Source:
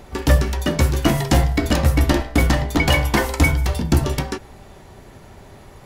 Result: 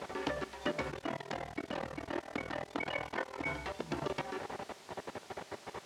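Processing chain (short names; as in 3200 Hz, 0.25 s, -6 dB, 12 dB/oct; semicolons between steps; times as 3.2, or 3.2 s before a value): level quantiser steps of 21 dB; limiter -21.5 dBFS, peak gain reduction 10.5 dB; compressor 2.5:1, threshold -37 dBFS, peak gain reduction 8.5 dB; tone controls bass -13 dB, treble -14 dB; requantised 10-bit, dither triangular; 0.91–3.46 AM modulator 40 Hz, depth 85%; BPF 120–5900 Hz; gain +8 dB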